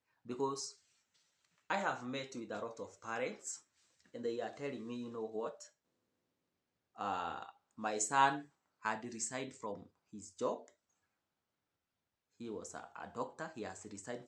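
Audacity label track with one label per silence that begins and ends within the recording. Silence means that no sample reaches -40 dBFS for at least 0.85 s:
0.680000	1.700000	silence
5.620000	6.990000	silence
10.560000	12.420000	silence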